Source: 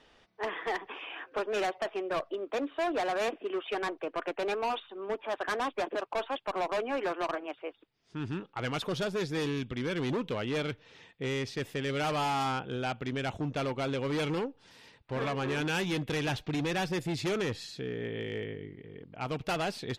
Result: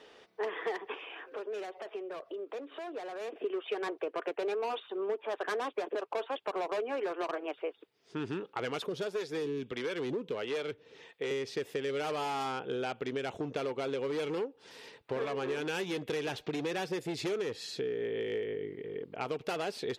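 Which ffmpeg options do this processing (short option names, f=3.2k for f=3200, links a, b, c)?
-filter_complex "[0:a]asettb=1/sr,asplit=3[a][b][c];[a]atrim=end=0.944[d];[b]atrim=start=0.94:end=3.36,asetpts=PTS-STARTPTS,afade=t=in:d=0.004:c=qsin,afade=t=out:st=2.416:d=0.004:c=qsin,acompressor=threshold=-46dB:ratio=8:attack=3.2:release=140:knee=1:detection=peak[e];[c]atrim=start=3.356[f];[d][e]acrossfade=d=0.004:c1=hsin:c2=qsin[g];[g][f]acrossfade=d=0.004:c1=qsin:c2=hsin,asettb=1/sr,asplit=3[h][i][j];[h]atrim=end=8.864[k];[i]atrim=start=8.86:end=11.31,asetpts=PTS-STARTPTS,afade=t=in:d=0.004:c=qsin,afade=t=out:st=2.446:d=0.004:c=qsin,acrossover=split=440[l][m];[l]aeval=exprs='val(0)*(1-0.7/2+0.7/2*cos(2*PI*1.5*n/s))':c=same[n];[m]aeval=exprs='val(0)*(1-0.7/2-0.7/2*cos(2*PI*1.5*n/s))':c=same[o];[n][o]amix=inputs=2:normalize=0[p];[j]atrim=start=11.306[q];[k][p]acrossfade=d=0.004:c1=hsin:c2=qsin[r];[r][q]acrossfade=d=0.004:c1=qsin:c2=hsin,highpass=f=300:p=1,equalizer=f=430:w=2.4:g=9.5,acompressor=threshold=-37dB:ratio=4,volume=4dB"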